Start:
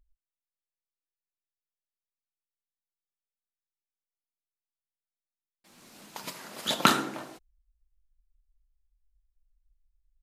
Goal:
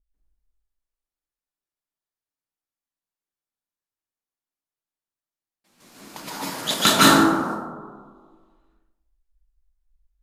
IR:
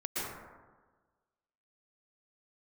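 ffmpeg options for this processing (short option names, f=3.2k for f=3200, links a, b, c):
-filter_complex "[0:a]asettb=1/sr,asplit=3[a][b][c];[a]atrim=end=5.804[d];[b]atrim=start=5.8:end=7.09,asetpts=PTS-STARTPTS,afade=t=in:d=0.004:c=qsin,afade=t=out:st=1.286:d=0.004:c=qsin,acontrast=79[e];[c]atrim=start=7.086[f];[d][e]acrossfade=d=0.004:c1=hsin:c2=qsin[g];[g][f]acrossfade=d=0.004:c1=qsin:c2=hsin[h];[1:a]atrim=start_sample=2205,asetrate=34839,aresample=44100[i];[h][i]afir=irnorm=-1:irlink=0,adynamicequalizer=threshold=0.0224:dfrequency=2900:dqfactor=0.7:tfrequency=2900:tqfactor=0.7:attack=5:release=100:ratio=0.375:range=3:mode=boostabove:tftype=highshelf,volume=-3dB"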